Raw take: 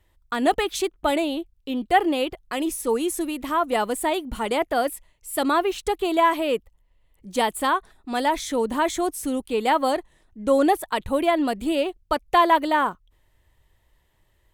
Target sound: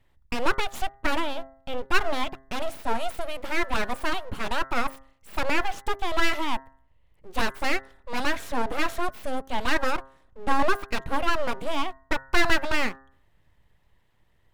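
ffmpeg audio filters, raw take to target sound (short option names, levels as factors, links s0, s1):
-af "bass=f=250:g=1,treble=f=4000:g=-9,aeval=exprs='abs(val(0))':c=same,bandreject=f=133.8:t=h:w=4,bandreject=f=267.6:t=h:w=4,bandreject=f=401.4:t=h:w=4,bandreject=f=535.2:t=h:w=4,bandreject=f=669:t=h:w=4,bandreject=f=802.8:t=h:w=4,bandreject=f=936.6:t=h:w=4,bandreject=f=1070.4:t=h:w=4,bandreject=f=1204.2:t=h:w=4,bandreject=f=1338:t=h:w=4,bandreject=f=1471.8:t=h:w=4,bandreject=f=1605.6:t=h:w=4,bandreject=f=1739.4:t=h:w=4,bandreject=f=1873.2:t=h:w=4,bandreject=f=2007:t=h:w=4"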